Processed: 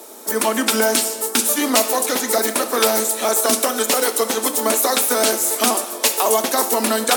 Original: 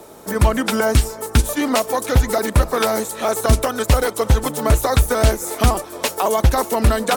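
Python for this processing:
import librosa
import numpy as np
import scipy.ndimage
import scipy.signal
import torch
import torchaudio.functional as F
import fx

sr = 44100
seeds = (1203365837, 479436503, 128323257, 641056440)

y = scipy.signal.sosfilt(scipy.signal.ellip(4, 1.0, 40, 220.0, 'highpass', fs=sr, output='sos'), x)
y = fx.high_shelf(y, sr, hz=3200.0, db=11.5)
y = fx.rev_gated(y, sr, seeds[0], gate_ms=320, shape='falling', drr_db=8.0)
y = F.gain(torch.from_numpy(y), -1.0).numpy()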